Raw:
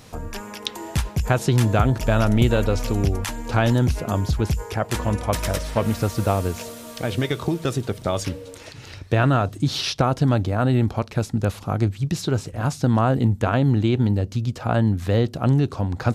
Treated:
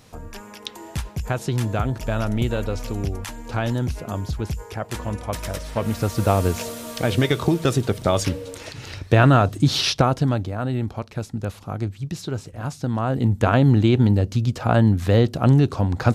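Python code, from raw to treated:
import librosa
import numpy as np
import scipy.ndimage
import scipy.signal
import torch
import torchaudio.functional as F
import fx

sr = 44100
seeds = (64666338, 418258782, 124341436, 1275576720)

y = fx.gain(x, sr, db=fx.line((5.56, -5.0), (6.49, 4.0), (9.89, 4.0), (10.53, -5.5), (12.98, -5.5), (13.45, 3.0)))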